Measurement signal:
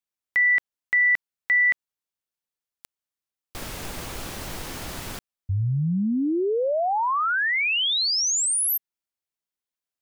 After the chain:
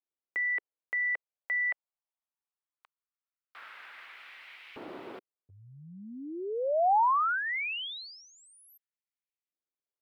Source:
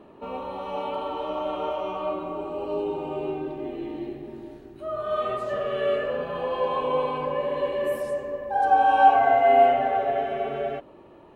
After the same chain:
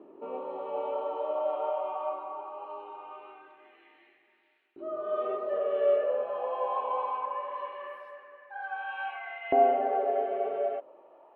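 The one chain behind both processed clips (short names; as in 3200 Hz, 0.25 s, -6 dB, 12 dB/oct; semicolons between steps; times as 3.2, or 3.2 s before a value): bell 1700 Hz -4 dB 0.24 oct; LFO high-pass saw up 0.21 Hz 320–2400 Hz; air absorption 480 m; gain -5.5 dB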